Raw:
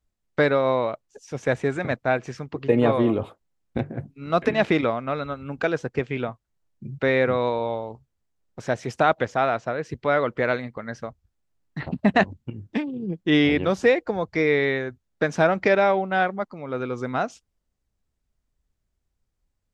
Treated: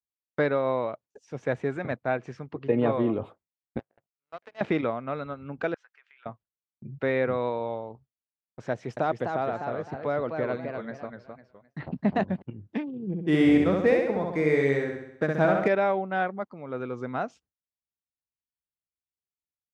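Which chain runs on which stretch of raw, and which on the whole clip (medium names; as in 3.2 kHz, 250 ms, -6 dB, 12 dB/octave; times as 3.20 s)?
3.79–4.61 s: resonant low shelf 410 Hz -13.5 dB, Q 1.5 + compression 1.5:1, threshold -42 dBFS + power-law waveshaper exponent 2
5.74–6.26 s: high-pass 1.4 kHz 24 dB/octave + tilt EQ -3 dB/octave + compression 8:1, threshold -46 dBFS
8.72–12.42 s: dynamic bell 1.9 kHz, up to -7 dB, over -34 dBFS, Q 0.7 + modulated delay 254 ms, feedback 31%, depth 194 cents, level -5.5 dB
13.07–15.68 s: median filter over 9 samples + bass shelf 200 Hz +4.5 dB + feedback delay 65 ms, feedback 56%, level -3 dB
whole clip: high-pass 86 Hz; gate with hold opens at -41 dBFS; low-pass 2.1 kHz 6 dB/octave; trim -4.5 dB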